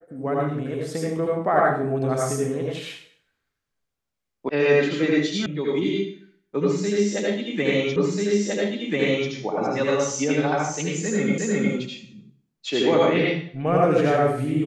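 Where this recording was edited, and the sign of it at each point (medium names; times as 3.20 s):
4.49 s: sound stops dead
5.46 s: sound stops dead
7.96 s: repeat of the last 1.34 s
11.38 s: repeat of the last 0.36 s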